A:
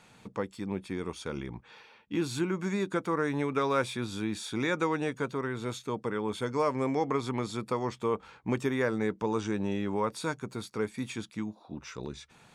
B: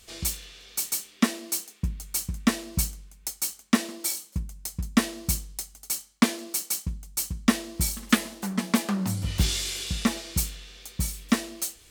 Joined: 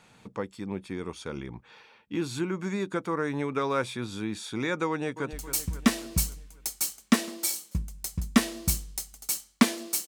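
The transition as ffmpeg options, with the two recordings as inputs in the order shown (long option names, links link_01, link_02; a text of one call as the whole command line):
ffmpeg -i cue0.wav -i cue1.wav -filter_complex "[0:a]apad=whole_dur=10.07,atrim=end=10.07,atrim=end=5.332[link_01];[1:a]atrim=start=1.938:end=6.68[link_02];[link_01][link_02]acrossfade=duration=0.004:curve1=hsin:curve2=hsin,asplit=2[link_03][link_04];[link_04]afade=type=in:start_time=4.89:duration=0.01,afade=type=out:start_time=5.33:duration=0.01,aecho=0:1:270|540|810|1080|1350|1620:0.266073|0.14634|0.0804869|0.0442678|0.0243473|0.013391[link_05];[link_03][link_05]amix=inputs=2:normalize=0" out.wav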